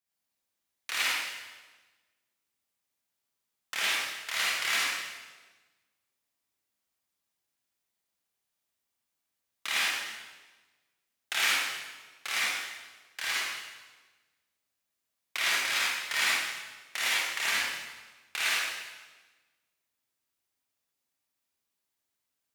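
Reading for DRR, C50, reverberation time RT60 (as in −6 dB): −7.0 dB, −4.5 dB, 1.3 s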